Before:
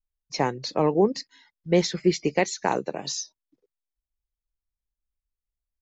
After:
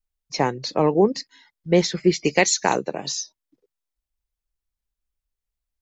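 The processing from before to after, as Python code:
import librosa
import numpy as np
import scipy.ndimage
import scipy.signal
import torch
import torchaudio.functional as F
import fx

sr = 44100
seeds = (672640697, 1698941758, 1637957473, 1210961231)

y = fx.high_shelf(x, sr, hz=fx.line((2.24, 2000.0), (2.75, 3100.0)), db=11.0, at=(2.24, 2.75), fade=0.02)
y = y * 10.0 ** (3.0 / 20.0)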